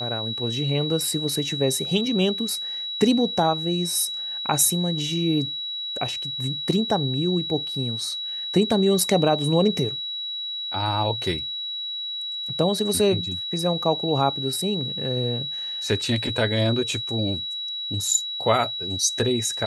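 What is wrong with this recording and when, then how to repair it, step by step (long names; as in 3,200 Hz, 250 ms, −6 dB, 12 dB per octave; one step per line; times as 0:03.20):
whistle 3,900 Hz −28 dBFS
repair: notch filter 3,900 Hz, Q 30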